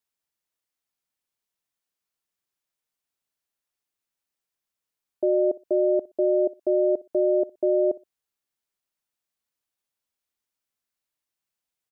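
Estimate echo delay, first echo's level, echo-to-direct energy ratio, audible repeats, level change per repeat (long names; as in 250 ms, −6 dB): 61 ms, −20.5 dB, −20.5 dB, 2, −13.0 dB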